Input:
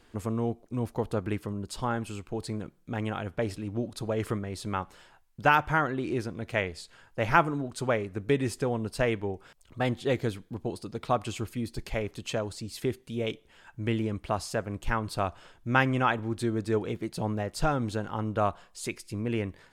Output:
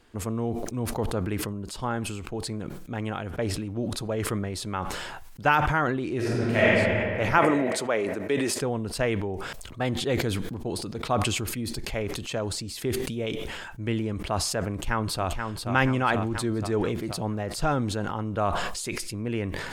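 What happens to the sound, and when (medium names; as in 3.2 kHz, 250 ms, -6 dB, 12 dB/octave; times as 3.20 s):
6.16–6.75 s: reverb throw, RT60 2.7 s, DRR -9.5 dB
7.38–8.61 s: high-pass 290 Hz
14.73–15.67 s: echo throw 480 ms, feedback 50%, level -5.5 dB
whole clip: decay stretcher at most 29 dB/s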